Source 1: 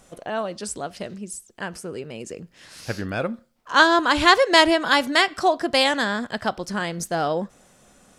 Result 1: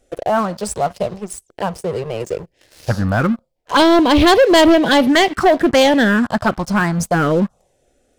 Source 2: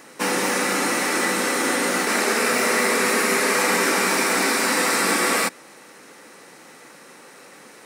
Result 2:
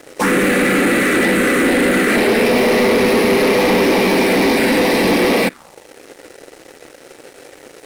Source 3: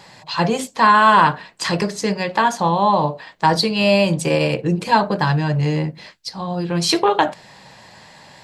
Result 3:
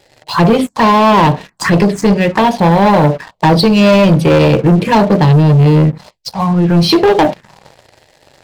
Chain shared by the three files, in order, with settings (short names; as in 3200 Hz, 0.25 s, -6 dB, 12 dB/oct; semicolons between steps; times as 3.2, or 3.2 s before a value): envelope phaser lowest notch 170 Hz, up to 1400 Hz, full sweep at -16.5 dBFS; high shelf 2000 Hz -11 dB; sample leveller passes 3; gain +5 dB